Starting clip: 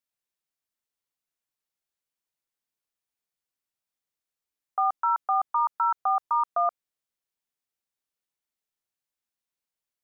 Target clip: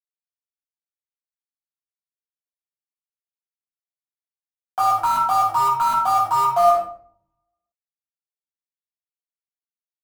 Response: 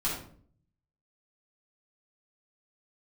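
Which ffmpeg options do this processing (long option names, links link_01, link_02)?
-filter_complex "[0:a]aeval=exprs='val(0)+0.5*0.0126*sgn(val(0))':channel_layout=same,equalizer=frequency=1100:width_type=o:width=0.51:gain=-2.5,asplit=2[link_01][link_02];[link_02]acompressor=threshold=-34dB:ratio=6,volume=2dB[link_03];[link_01][link_03]amix=inputs=2:normalize=0,aeval=exprs='val(0)*gte(abs(val(0)),0.0398)':channel_layout=same[link_04];[1:a]atrim=start_sample=2205,asetrate=41454,aresample=44100[link_05];[link_04][link_05]afir=irnorm=-1:irlink=0,volume=-1.5dB"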